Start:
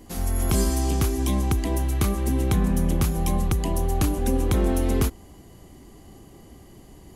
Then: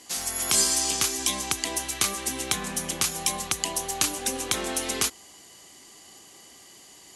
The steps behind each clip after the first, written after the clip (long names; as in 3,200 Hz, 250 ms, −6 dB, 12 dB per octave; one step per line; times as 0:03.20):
meter weighting curve ITU-R 468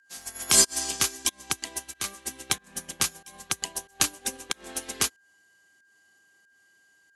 fake sidechain pumping 93 BPM, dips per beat 1, −19 dB, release 200 ms
steady tone 1,600 Hz −41 dBFS
expander for the loud parts 2.5 to 1, over −36 dBFS
level +5 dB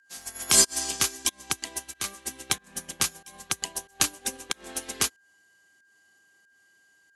no processing that can be heard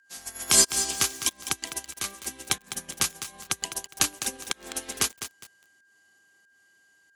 feedback echo at a low word length 205 ms, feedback 35%, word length 6 bits, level −10 dB